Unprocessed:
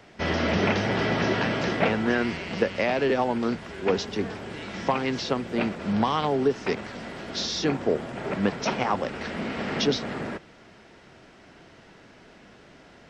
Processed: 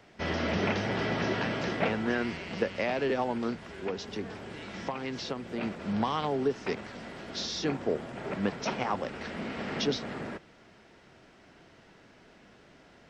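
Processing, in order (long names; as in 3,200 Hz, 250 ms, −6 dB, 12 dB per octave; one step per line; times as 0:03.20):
0:03.50–0:05.63: downward compressor 3 to 1, threshold −26 dBFS, peak gain reduction 6.5 dB
level −5.5 dB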